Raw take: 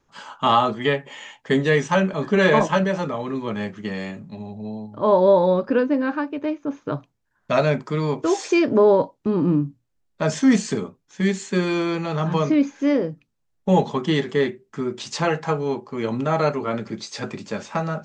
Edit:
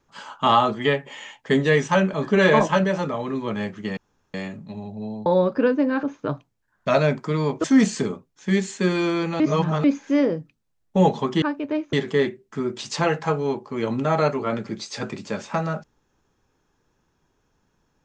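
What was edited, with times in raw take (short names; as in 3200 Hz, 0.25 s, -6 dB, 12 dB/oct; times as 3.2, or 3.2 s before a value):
3.97 insert room tone 0.37 s
4.89–5.38 cut
6.15–6.66 move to 14.14
8.27–10.36 cut
12.12–12.56 reverse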